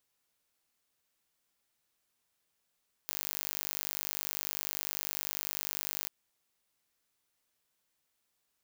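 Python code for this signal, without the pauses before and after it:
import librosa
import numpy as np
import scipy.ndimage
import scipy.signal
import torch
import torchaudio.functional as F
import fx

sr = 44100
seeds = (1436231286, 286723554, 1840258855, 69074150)

y = 10.0 ** (-9.0 / 20.0) * (np.mod(np.arange(round(3.0 * sr)), round(sr / 50.0)) == 0)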